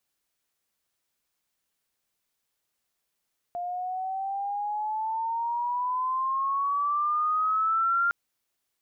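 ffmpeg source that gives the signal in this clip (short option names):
-f lavfi -i "aevalsrc='pow(10,(-29.5+8.5*t/4.56)/20)*sin(2*PI*700*4.56/log(1400/700)*(exp(log(1400/700)*t/4.56)-1))':d=4.56:s=44100"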